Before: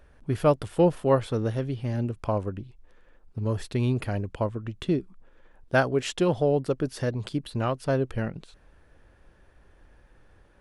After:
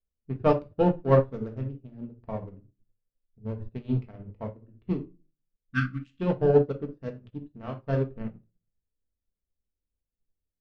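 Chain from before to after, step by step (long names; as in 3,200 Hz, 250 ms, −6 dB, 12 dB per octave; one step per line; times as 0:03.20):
adaptive Wiener filter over 41 samples
low-pass that shuts in the quiet parts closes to 2,200 Hz, open at −21 dBFS
healed spectral selection 0:05.37–0:06.18, 330–1,100 Hz before
in parallel at −10 dB: hard clipping −22.5 dBFS, distortion −9 dB
on the sum: high-frequency loss of the air 75 metres
on a send at −1.5 dB: convolution reverb RT60 0.50 s, pre-delay 4 ms
on the sum: expander for the loud parts 2.5 to 1, over −40 dBFS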